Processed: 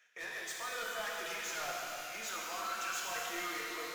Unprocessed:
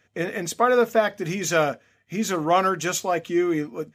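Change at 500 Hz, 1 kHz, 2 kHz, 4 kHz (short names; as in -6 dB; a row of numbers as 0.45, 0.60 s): -23.0, -15.5, -9.5, -7.0 dB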